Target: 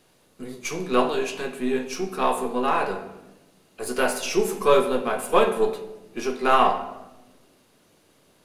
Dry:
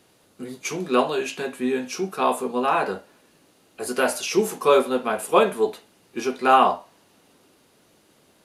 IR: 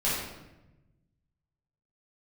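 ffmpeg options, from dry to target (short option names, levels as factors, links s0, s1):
-filter_complex "[0:a]aeval=exprs='if(lt(val(0),0),0.708*val(0),val(0))':c=same,asplit=2[s0][s1];[1:a]atrim=start_sample=2205[s2];[s1][s2]afir=irnorm=-1:irlink=0,volume=0.141[s3];[s0][s3]amix=inputs=2:normalize=0,volume=0.841"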